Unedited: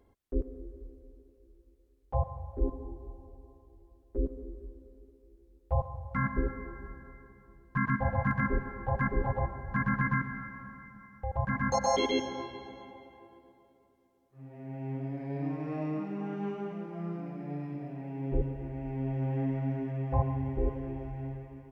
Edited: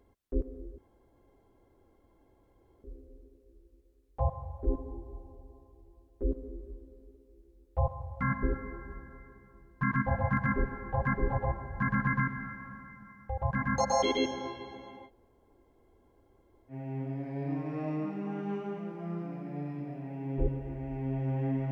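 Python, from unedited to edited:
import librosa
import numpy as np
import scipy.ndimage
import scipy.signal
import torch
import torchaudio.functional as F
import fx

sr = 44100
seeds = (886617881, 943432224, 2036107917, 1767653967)

y = fx.edit(x, sr, fx.insert_room_tone(at_s=0.78, length_s=2.06),
    fx.room_tone_fill(start_s=13.02, length_s=1.63, crossfade_s=0.06), tone=tone)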